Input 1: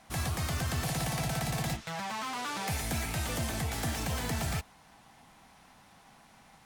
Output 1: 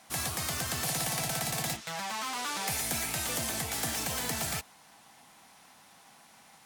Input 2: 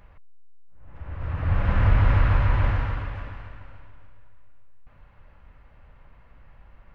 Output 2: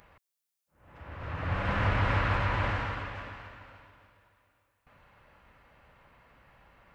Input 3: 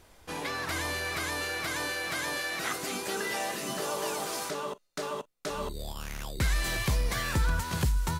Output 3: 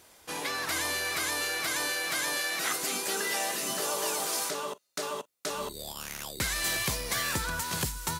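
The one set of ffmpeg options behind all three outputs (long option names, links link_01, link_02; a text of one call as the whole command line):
ffmpeg -i in.wav -af "highpass=frequency=240:poles=1,highshelf=frequency=4200:gain=8" out.wav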